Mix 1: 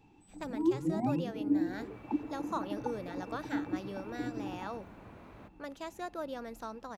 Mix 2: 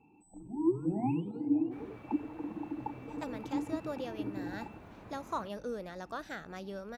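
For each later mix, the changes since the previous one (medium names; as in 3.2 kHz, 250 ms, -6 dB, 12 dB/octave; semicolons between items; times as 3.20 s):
speech: entry +2.80 s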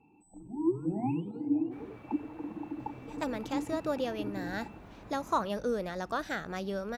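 speech +7.0 dB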